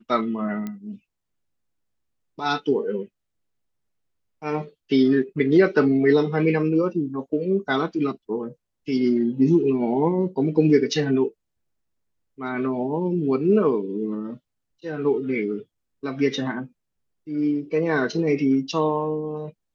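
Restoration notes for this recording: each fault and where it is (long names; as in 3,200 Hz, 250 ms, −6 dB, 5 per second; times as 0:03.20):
0:00.67: click −19 dBFS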